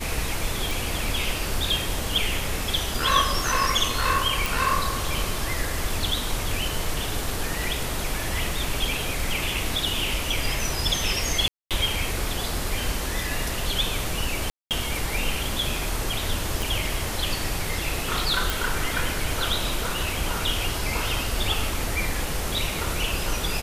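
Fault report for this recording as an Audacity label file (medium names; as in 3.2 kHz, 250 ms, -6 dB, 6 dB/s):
0.710000	0.710000	pop
4.460000	4.460000	pop
11.480000	11.710000	dropout 227 ms
14.500000	14.710000	dropout 208 ms
16.620000	16.620000	pop
18.500000	18.500000	pop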